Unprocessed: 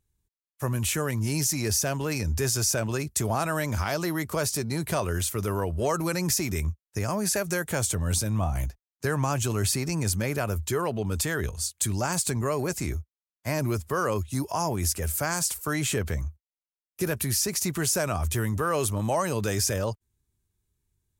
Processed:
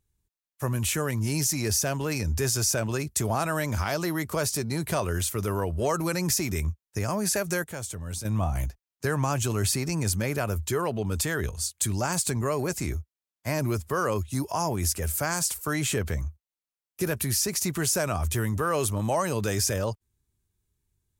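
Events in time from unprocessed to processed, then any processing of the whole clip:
7.64–8.25 gain -8.5 dB

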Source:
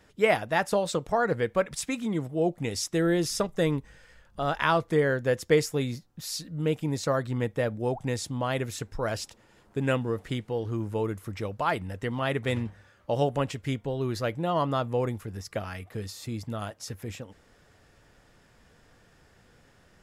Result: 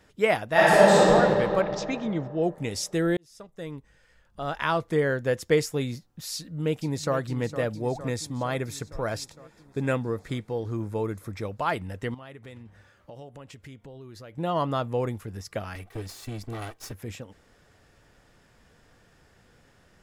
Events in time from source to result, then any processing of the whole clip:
0.51–1.11 reverb throw, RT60 2.9 s, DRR -10 dB
1.61–2.43 steep low-pass 6300 Hz 48 dB/oct
3.17–5.05 fade in
6.35–7.17 echo throw 0.46 s, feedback 70%, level -12 dB
7.76–11.48 notch 2900 Hz, Q 6.4
12.14–14.38 compressor 4:1, threshold -44 dBFS
15.75–16.92 minimum comb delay 2.6 ms

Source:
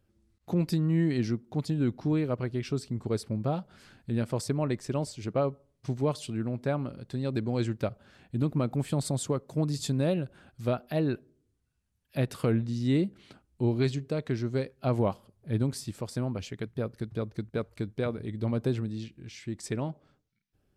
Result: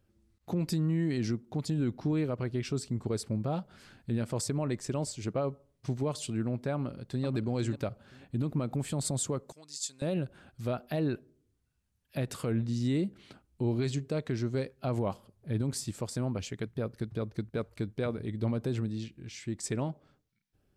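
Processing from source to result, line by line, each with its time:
6.74–7.26 echo throw 0.49 s, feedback 20%, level -9.5 dB
9.52–10.02 band-pass 6200 Hz, Q 1.1
whole clip: dynamic EQ 7400 Hz, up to +6 dB, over -60 dBFS, Q 2.1; limiter -22 dBFS

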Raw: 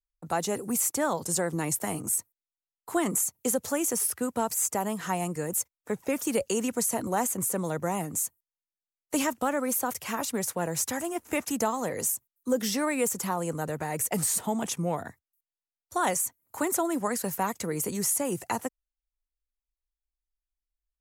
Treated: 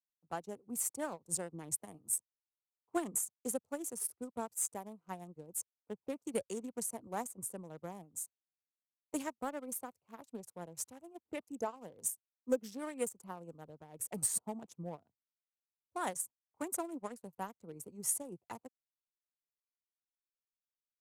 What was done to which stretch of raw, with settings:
11.24–11.76 formant sharpening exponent 1.5
whole clip: Wiener smoothing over 25 samples; dynamic EQ 9000 Hz, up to +7 dB, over -48 dBFS, Q 5.3; upward expander 2.5:1, over -43 dBFS; gain -3.5 dB

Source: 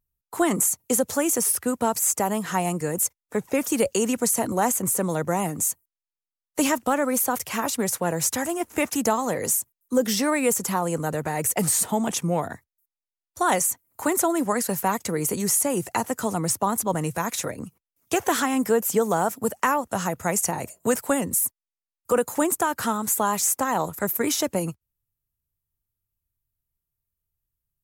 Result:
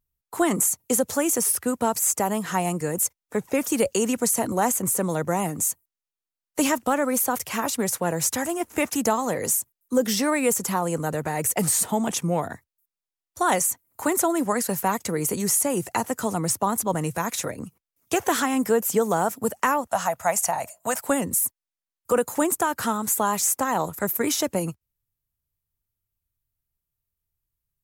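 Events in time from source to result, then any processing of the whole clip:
19.87–21.04 resonant low shelf 520 Hz -8 dB, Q 3

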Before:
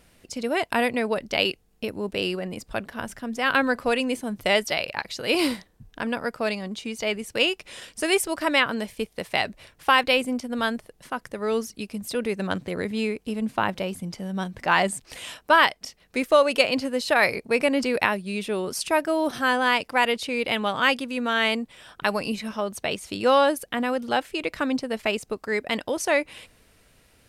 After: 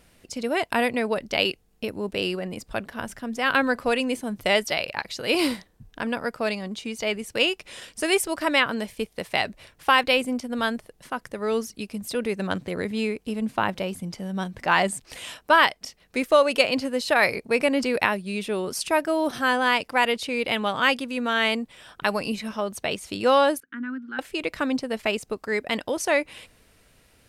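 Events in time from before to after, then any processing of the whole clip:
23.6–24.19 double band-pass 630 Hz, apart 2.5 oct

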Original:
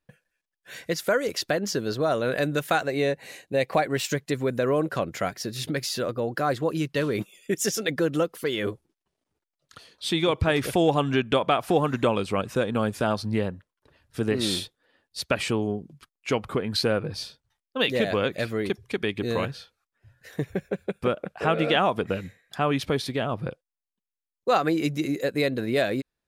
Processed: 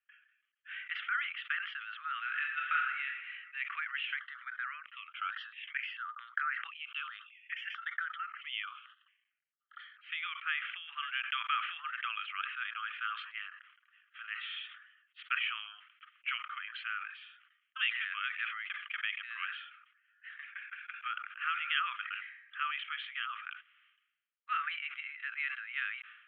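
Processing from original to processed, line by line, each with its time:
2.22–3.06 reverb throw, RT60 0.92 s, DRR 1.5 dB
4.19–10.12 step phaser 4.5 Hz 660–7700 Hz
whole clip: compressor 2:1, threshold -26 dBFS; Chebyshev band-pass 1200–3200 Hz, order 5; sustainer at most 67 dB/s

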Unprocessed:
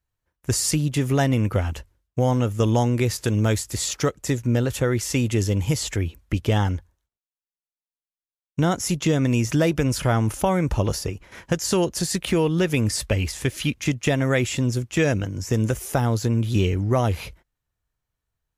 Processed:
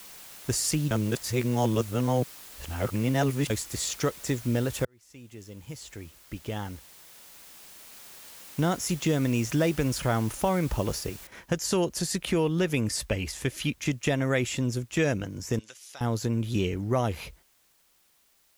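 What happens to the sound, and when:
0.91–3.5 reverse
4.85–8.61 fade in linear
11.27 noise floor step -42 dB -61 dB
15.59–16.01 band-pass 4200 Hz, Q 1.6
whole clip: bell 93 Hz -6.5 dB 0.55 oct; gain -4.5 dB

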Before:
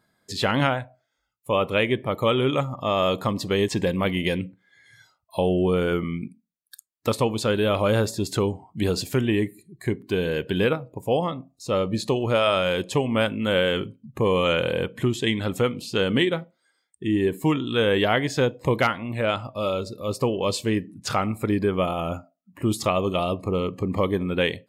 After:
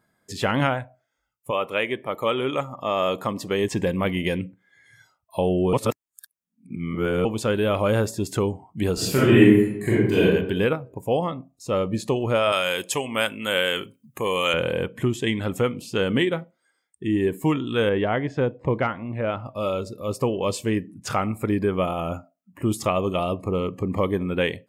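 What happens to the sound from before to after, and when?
1.5–3.63 HPF 610 Hz -> 180 Hz 6 dB/oct
5.73–7.25 reverse
8.94–10.22 reverb throw, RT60 0.9 s, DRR -8.5 dB
12.52–14.54 tilt +3.5 dB/oct
17.89–19.46 tape spacing loss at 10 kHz 27 dB
whole clip: bell 4100 Hz -8 dB 0.57 oct

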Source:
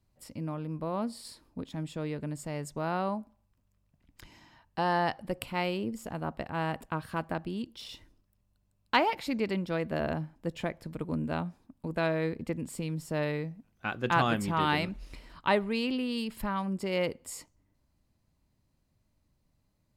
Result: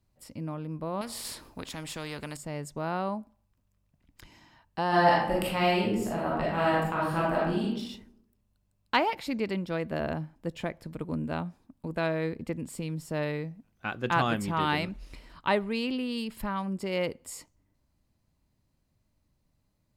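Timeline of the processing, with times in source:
1.01–2.37 spectral compressor 2:1
4.88–7.66 reverb throw, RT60 0.8 s, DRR -6.5 dB

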